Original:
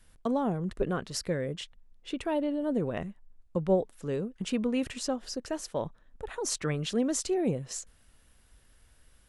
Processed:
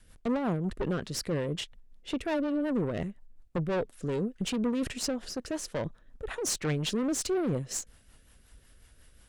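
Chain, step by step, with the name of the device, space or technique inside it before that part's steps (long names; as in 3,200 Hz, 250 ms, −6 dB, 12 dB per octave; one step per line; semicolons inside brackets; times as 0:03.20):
overdriven rotary cabinet (tube saturation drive 31 dB, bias 0.45; rotating-speaker cabinet horn 5.5 Hz)
level +7 dB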